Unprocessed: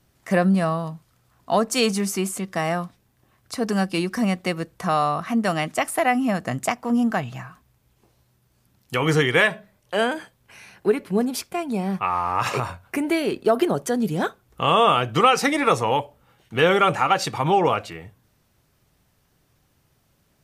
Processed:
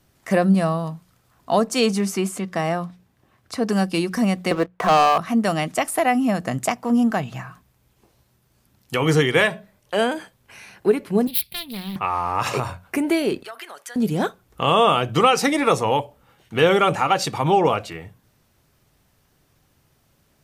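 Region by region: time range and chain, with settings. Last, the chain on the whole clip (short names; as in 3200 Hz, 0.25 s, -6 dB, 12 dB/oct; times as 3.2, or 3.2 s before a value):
1.67–3.7 HPF 49 Hz + high shelf 6100 Hz -7.5 dB
4.51–5.18 three-band isolator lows -15 dB, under 310 Hz, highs -21 dB, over 2700 Hz + sample leveller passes 3
11.27–11.96 self-modulated delay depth 0.49 ms + EQ curve 130 Hz 0 dB, 290 Hz -13 dB, 1400 Hz -16 dB, 2200 Hz -2 dB, 4100 Hz +9 dB, 6600 Hz -20 dB, 11000 Hz +10 dB
13.43–13.96 HPF 1300 Hz + bell 2000 Hz +5.5 dB + compressor 2.5:1, threshold -39 dBFS
whole clip: notches 60/120/180 Hz; dynamic EQ 1600 Hz, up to -4 dB, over -32 dBFS, Q 0.83; gain +2.5 dB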